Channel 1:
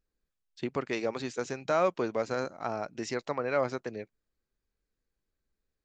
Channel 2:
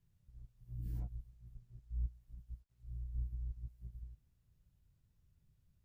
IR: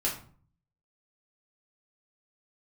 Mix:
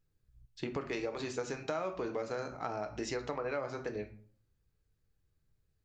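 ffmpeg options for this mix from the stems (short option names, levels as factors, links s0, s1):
-filter_complex "[0:a]volume=0.708,asplit=3[s0][s1][s2];[s1]volume=0.398[s3];[1:a]lowshelf=f=330:g=6.5,volume=0.237[s4];[s2]apad=whole_len=257775[s5];[s4][s5]sidechaincompress=threshold=0.00891:ratio=8:attack=16:release=255[s6];[2:a]atrim=start_sample=2205[s7];[s3][s7]afir=irnorm=-1:irlink=0[s8];[s0][s6][s8]amix=inputs=3:normalize=0,acompressor=threshold=0.0224:ratio=6"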